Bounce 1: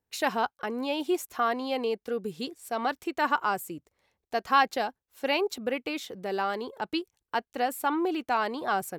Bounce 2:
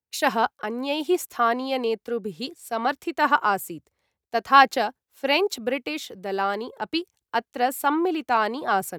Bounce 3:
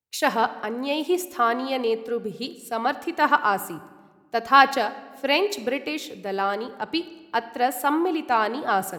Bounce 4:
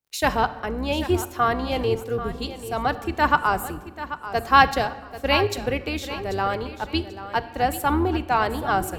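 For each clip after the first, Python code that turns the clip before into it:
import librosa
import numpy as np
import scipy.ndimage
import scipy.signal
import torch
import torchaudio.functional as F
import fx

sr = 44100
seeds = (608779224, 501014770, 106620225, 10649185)

y1 = scipy.signal.sosfilt(scipy.signal.butter(2, 50.0, 'highpass', fs=sr, output='sos'), x)
y1 = fx.band_widen(y1, sr, depth_pct=40)
y1 = y1 * 10.0 ** (5.0 / 20.0)
y2 = fx.room_shoebox(y1, sr, seeds[0], volume_m3=1400.0, walls='mixed', distance_m=0.42)
y3 = fx.octave_divider(y2, sr, octaves=2, level_db=0.0)
y3 = fx.dmg_crackle(y3, sr, seeds[1], per_s=47.0, level_db=-54.0)
y3 = fx.echo_feedback(y3, sr, ms=788, feedback_pct=27, wet_db=-13)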